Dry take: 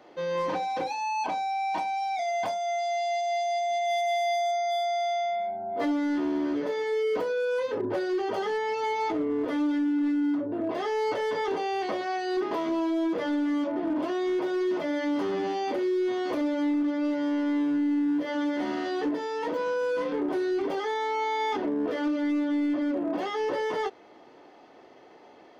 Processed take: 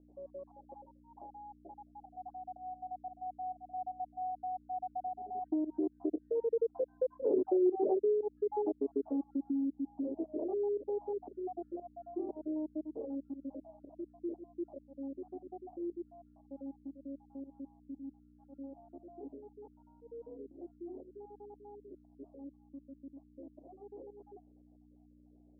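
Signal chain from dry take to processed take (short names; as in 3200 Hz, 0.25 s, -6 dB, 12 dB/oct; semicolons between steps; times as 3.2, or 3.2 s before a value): random spectral dropouts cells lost 49%; Doppler pass-by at 7.56, 22 m/s, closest 17 m; pump 117 bpm, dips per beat 1, -20 dB, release 0.153 s; hum 60 Hz, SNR 16 dB; elliptic low-pass 740 Hz, stop band 70 dB; dynamic EQ 390 Hz, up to +3 dB, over -48 dBFS, Q 2; compressor 2:1, threshold -40 dBFS, peak gain reduction 9.5 dB; resonant low shelf 210 Hz -12 dB, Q 1.5; gain +5 dB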